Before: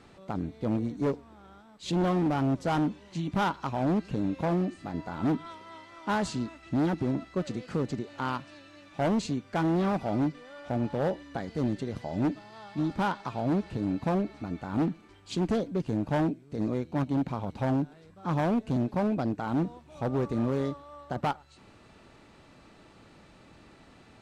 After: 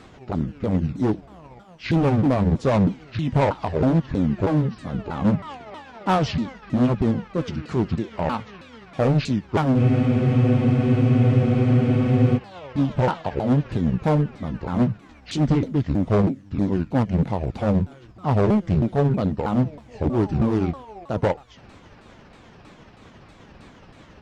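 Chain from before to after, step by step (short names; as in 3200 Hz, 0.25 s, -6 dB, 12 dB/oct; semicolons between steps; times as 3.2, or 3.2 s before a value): repeated pitch sweeps -9.5 st, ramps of 0.319 s; spectral freeze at 9.8, 2.57 s; gain +9 dB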